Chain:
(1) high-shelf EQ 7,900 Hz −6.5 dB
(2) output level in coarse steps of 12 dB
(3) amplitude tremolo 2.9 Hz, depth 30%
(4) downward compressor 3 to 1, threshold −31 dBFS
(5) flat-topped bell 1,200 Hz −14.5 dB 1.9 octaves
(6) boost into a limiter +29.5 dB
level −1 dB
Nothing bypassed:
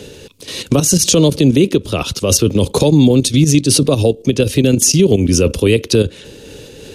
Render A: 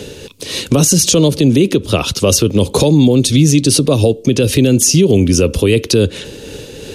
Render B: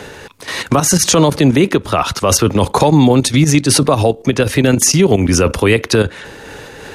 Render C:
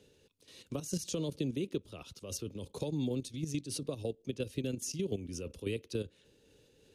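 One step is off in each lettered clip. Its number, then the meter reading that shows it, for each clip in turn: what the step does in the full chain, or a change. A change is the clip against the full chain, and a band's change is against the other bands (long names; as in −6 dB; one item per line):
2, change in momentary loudness spread +6 LU
5, 1 kHz band +11.5 dB
6, change in crest factor +7.0 dB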